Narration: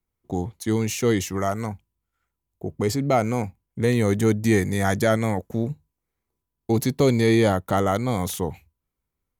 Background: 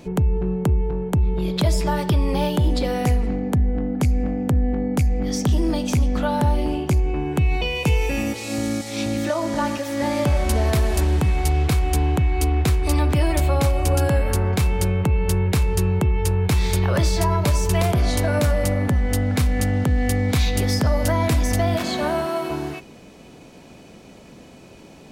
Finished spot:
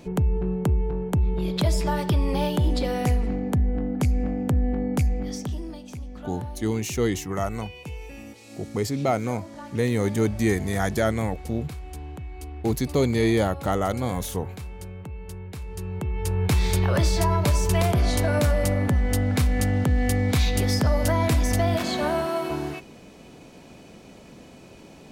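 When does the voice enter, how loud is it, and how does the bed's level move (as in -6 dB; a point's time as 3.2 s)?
5.95 s, -3.0 dB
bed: 5.07 s -3 dB
5.82 s -17.5 dB
15.56 s -17.5 dB
16.5 s -2 dB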